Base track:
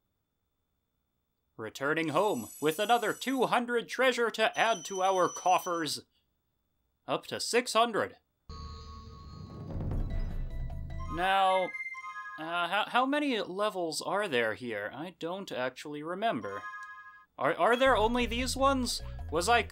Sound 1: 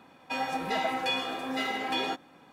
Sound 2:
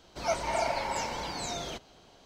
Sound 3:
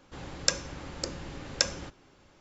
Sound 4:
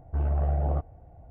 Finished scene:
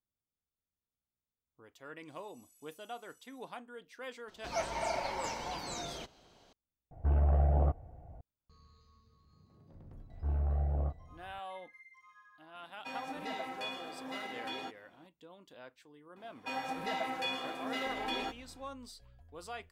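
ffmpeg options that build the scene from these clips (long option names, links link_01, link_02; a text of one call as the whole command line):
ffmpeg -i bed.wav -i cue0.wav -i cue1.wav -i cue2.wav -i cue3.wav -filter_complex "[4:a]asplit=2[link_01][link_02];[1:a]asplit=2[link_03][link_04];[0:a]volume=-18.5dB[link_05];[link_02]asplit=2[link_06][link_07];[link_07]adelay=28,volume=-4.5dB[link_08];[link_06][link_08]amix=inputs=2:normalize=0[link_09];[link_05]asplit=2[link_10][link_11];[link_10]atrim=end=6.914[link_12];[link_01]atrim=end=1.3,asetpts=PTS-STARTPTS,volume=-1.5dB[link_13];[link_11]atrim=start=8.206[link_14];[2:a]atrim=end=2.25,asetpts=PTS-STARTPTS,volume=-5.5dB,afade=type=in:duration=0.004:curve=hsin,afade=type=out:start_time=2.246:duration=0.004:curve=hsin,adelay=4280[link_15];[link_09]atrim=end=1.3,asetpts=PTS-STARTPTS,volume=-10dB,afade=type=in:duration=0.004:curve=hsin,afade=type=out:start_time=1.296:duration=0.004:curve=hsin,adelay=10090[link_16];[link_03]atrim=end=2.52,asetpts=PTS-STARTPTS,volume=-11dB,afade=type=in:duration=0.004:curve=hsin,afade=type=out:start_time=2.516:duration=0.004:curve=hsin,adelay=12550[link_17];[link_04]atrim=end=2.52,asetpts=PTS-STARTPTS,volume=-6.5dB,afade=type=in:duration=0.004:curve=hsin,afade=type=out:start_time=2.516:duration=0.004:curve=hsin,adelay=16160[link_18];[link_12][link_13]acrossfade=duration=0.004:curve1=hsin:curve2=hsin[link_19];[link_19][link_14]acrossfade=duration=0.004:curve1=hsin:curve2=hsin[link_20];[link_20][link_15][link_16][link_17][link_18]amix=inputs=5:normalize=0" out.wav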